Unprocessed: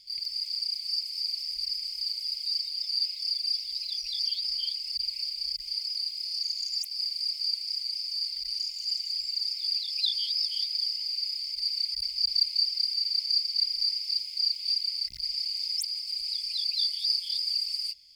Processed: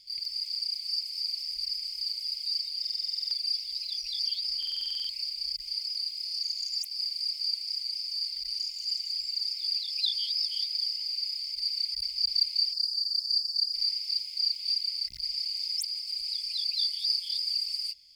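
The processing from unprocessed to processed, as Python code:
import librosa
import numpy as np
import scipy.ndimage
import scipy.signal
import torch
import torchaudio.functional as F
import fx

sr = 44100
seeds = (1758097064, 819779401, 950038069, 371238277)

y = fx.cheby1_bandstop(x, sr, low_hz=1100.0, high_hz=4300.0, order=4, at=(12.73, 13.74))
y = fx.buffer_glitch(y, sr, at_s=(2.8, 4.58), block=2048, repeats=10)
y = y * 10.0 ** (-1.0 / 20.0)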